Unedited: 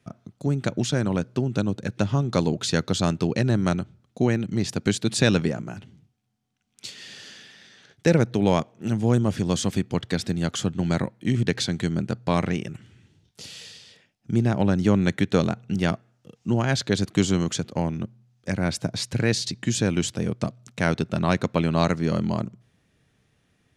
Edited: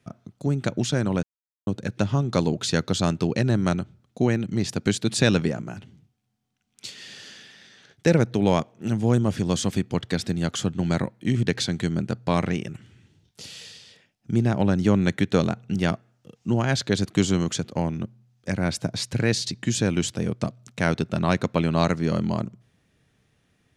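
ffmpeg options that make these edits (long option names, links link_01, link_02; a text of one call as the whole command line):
ffmpeg -i in.wav -filter_complex "[0:a]asplit=3[link_01][link_02][link_03];[link_01]atrim=end=1.23,asetpts=PTS-STARTPTS,afade=type=out:start_time=1.226:duration=0.004:curve=hsin[link_04];[link_02]atrim=start=1.23:end=1.67,asetpts=PTS-STARTPTS,volume=0[link_05];[link_03]atrim=start=1.67,asetpts=PTS-STARTPTS,afade=type=in:duration=0.004:curve=hsin[link_06];[link_04][link_05][link_06]concat=n=3:v=0:a=1" out.wav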